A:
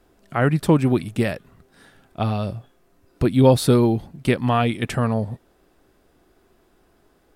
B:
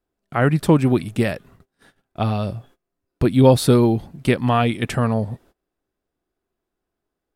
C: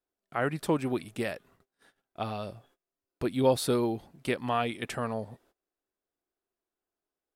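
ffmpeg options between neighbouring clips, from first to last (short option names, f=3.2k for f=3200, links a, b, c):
-af "agate=range=-23dB:threshold=-49dB:ratio=16:detection=peak,volume=1.5dB"
-af "bass=f=250:g=-10,treble=f=4k:g=1,volume=-9dB"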